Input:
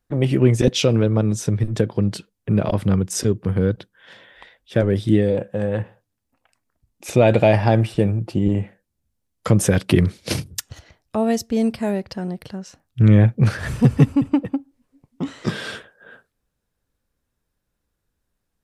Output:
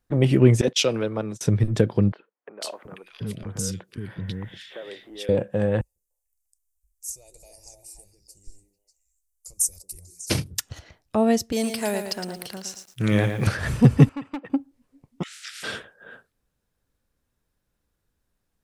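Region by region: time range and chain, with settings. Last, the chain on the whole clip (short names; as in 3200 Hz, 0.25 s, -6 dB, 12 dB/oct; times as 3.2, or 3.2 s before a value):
0.61–1.41 gate -25 dBFS, range -25 dB + HPF 630 Hz 6 dB/oct + three-band expander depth 40%
2.12–5.29 high shelf 2200 Hz +8.5 dB + compressor 5:1, threshold -28 dBFS + three bands offset in time mids, highs, lows 0.49/0.73 s, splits 390/1800 Hz
5.81–10.3 inverse Chebyshev band-stop 100–3500 Hz + high shelf 2500 Hz +4.5 dB + delay with a stepping band-pass 0.148 s, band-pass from 280 Hz, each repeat 1.4 oct, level -1 dB
11.52–13.47 RIAA curve recording + lo-fi delay 0.113 s, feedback 35%, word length 8-bit, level -7 dB
14.09–14.5 band-pass 1600 Hz, Q 1 + hard clip -25 dBFS
15.22–15.62 spectral limiter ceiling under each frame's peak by 29 dB + steep high-pass 1300 Hz 96 dB/oct + compressor 5:1, threshold -36 dBFS
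whole clip: dry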